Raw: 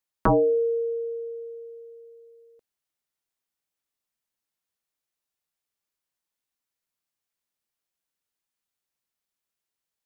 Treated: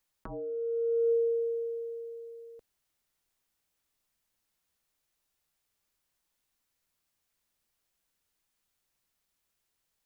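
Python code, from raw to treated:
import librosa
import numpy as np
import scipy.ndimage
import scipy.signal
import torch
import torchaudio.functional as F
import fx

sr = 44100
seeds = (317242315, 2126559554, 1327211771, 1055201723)

y = fx.low_shelf(x, sr, hz=74.0, db=11.5)
y = fx.over_compress(y, sr, threshold_db=-31.0, ratio=-1.0)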